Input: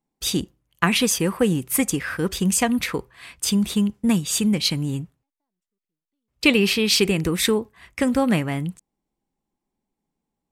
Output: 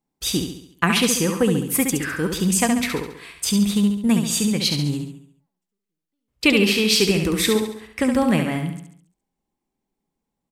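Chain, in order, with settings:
repeating echo 69 ms, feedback 48%, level −6 dB

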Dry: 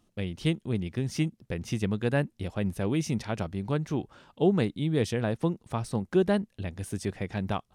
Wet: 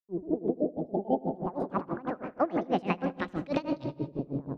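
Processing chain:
gliding playback speed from 200% → 139%
transient designer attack −3 dB, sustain +8 dB
time-frequency box erased 0:00.54–0:01.38, 890–2,900 Hz
slack as between gear wheels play −44 dBFS
auto-filter low-pass saw up 0.26 Hz 340–4,800 Hz
feedback echo with a low-pass in the loop 79 ms, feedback 73%, low-pass 1,200 Hz, level −4 dB
on a send at −13.5 dB: convolution reverb RT60 1.5 s, pre-delay 60 ms
on the sum: tremolo with a sine in dB 6.2 Hz, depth 23 dB

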